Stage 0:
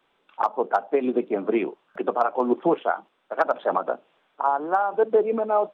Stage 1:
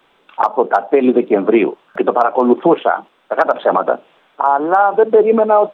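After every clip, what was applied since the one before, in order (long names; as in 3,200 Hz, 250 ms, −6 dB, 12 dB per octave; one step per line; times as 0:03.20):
boost into a limiter +13.5 dB
level −1 dB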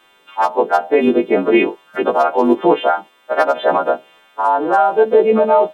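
every partial snapped to a pitch grid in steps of 2 semitones
dynamic equaliser 1,200 Hz, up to −6 dB, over −29 dBFS, Q 3.2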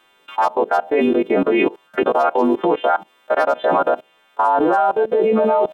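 output level in coarse steps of 21 dB
level +6 dB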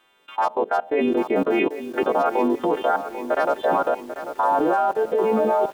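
feedback echo at a low word length 792 ms, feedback 55%, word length 6 bits, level −11 dB
level −4.5 dB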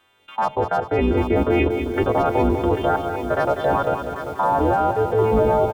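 sub-octave generator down 2 octaves, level 0 dB
on a send: repeating echo 198 ms, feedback 55%, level −8 dB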